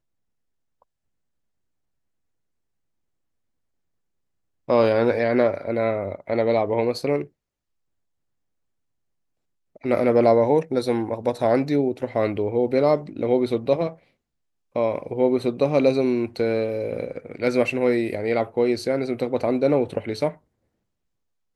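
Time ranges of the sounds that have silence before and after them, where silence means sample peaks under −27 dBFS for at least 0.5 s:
0:04.69–0:07.22
0:09.85–0:13.89
0:14.76–0:20.29

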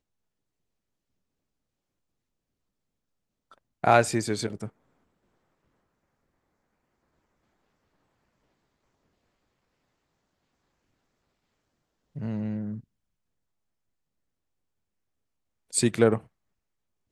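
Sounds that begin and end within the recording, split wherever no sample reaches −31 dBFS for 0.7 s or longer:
0:03.84–0:04.66
0:12.17–0:12.75
0:15.74–0:16.18

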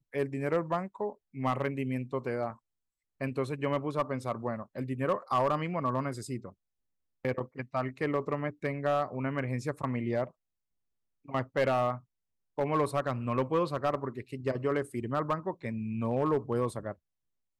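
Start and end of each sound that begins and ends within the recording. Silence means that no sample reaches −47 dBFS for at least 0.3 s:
0:03.21–0:06.52
0:07.25–0:10.29
0:11.26–0:11.99
0:12.58–0:16.93

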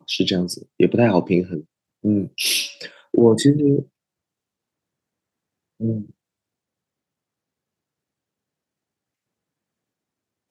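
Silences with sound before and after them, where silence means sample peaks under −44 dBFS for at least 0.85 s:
0:03.85–0:05.80

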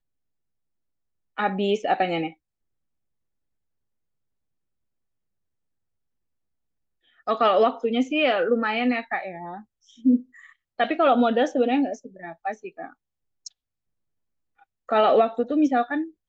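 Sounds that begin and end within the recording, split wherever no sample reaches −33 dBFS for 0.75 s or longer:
0:01.38–0:02.30
0:07.27–0:13.47

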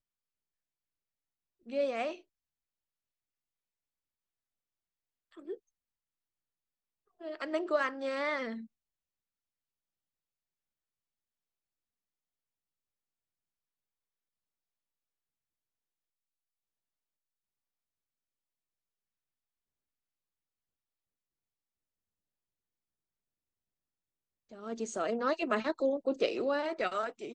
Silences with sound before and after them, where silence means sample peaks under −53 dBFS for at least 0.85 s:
0:02.21–0:05.32
0:05.57–0:07.21
0:08.66–0:24.51

